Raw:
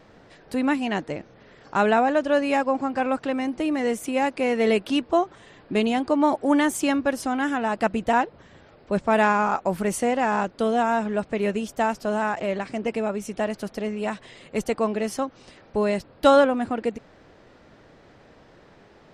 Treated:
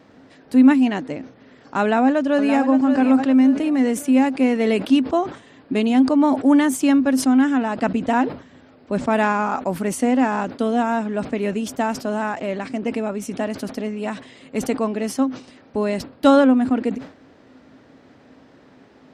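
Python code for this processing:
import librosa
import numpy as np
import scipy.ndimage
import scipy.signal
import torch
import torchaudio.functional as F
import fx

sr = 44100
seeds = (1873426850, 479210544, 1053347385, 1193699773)

y = fx.echo_throw(x, sr, start_s=1.81, length_s=0.73, ms=570, feedback_pct=40, wet_db=-9.0)
y = fx.lowpass(y, sr, hz=8700.0, slope=24, at=(7.44, 8.08))
y = scipy.signal.sosfilt(scipy.signal.butter(2, 74.0, 'highpass', fs=sr, output='sos'), y)
y = fx.peak_eq(y, sr, hz=260.0, db=14.5, octaves=0.24)
y = fx.sustainer(y, sr, db_per_s=140.0)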